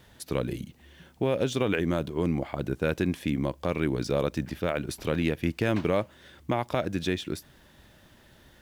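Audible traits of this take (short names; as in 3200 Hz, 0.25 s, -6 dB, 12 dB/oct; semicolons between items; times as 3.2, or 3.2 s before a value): a quantiser's noise floor 12-bit, dither triangular; IMA ADPCM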